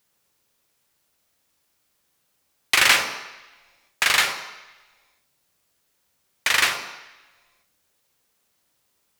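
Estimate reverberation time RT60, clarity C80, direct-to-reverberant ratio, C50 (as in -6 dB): 1.1 s, 9.0 dB, 5.0 dB, 6.5 dB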